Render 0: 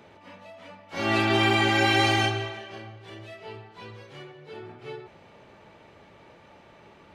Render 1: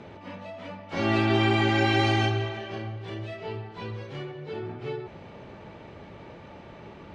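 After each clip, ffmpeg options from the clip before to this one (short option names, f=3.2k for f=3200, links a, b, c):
-af "lowpass=6.1k,lowshelf=f=450:g=8,acompressor=threshold=-37dB:ratio=1.5,volume=3.5dB"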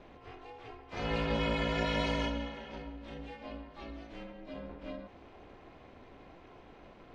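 -af "aeval=exprs='val(0)*sin(2*PI*170*n/s)':c=same,volume=-6dB"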